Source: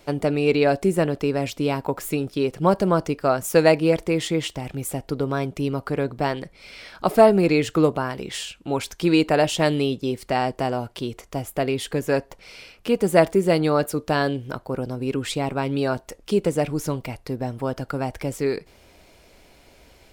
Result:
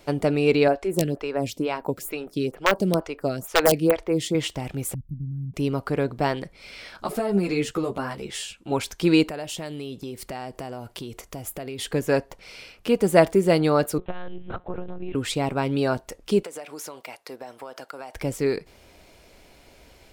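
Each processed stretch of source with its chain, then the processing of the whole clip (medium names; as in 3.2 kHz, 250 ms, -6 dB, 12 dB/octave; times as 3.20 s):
0.68–4.35 s: integer overflow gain 7.5 dB + lamp-driven phase shifter 2.2 Hz
4.94–5.54 s: inverse Chebyshev band-stop 460–7400 Hz, stop band 50 dB + distance through air 54 m
6.97–8.72 s: compression 10:1, threshold -16 dBFS + peaking EQ 8.9 kHz +3.5 dB 1 oct + three-phase chorus
9.28–11.79 s: compression 4:1, threshold -32 dBFS + treble shelf 8.1 kHz +7.5 dB
13.98–15.15 s: monotone LPC vocoder at 8 kHz 180 Hz + transformer saturation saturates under 120 Hz
16.43–18.15 s: high-pass 580 Hz + compression 12:1, threshold -32 dBFS
whole clip: none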